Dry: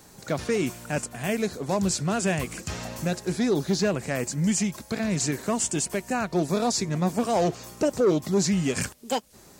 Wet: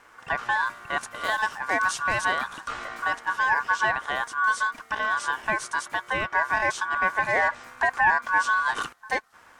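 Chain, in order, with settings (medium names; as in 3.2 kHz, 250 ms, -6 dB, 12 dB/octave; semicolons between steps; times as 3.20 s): low-pass 1.4 kHz 6 dB/octave, from 1.01 s 4 kHz, from 2.25 s 1.8 kHz; ring modulator 1.3 kHz; trim +3.5 dB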